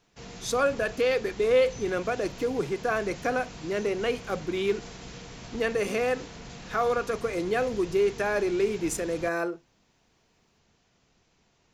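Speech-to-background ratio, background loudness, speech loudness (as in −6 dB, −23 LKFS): 15.0 dB, −43.0 LKFS, −28.0 LKFS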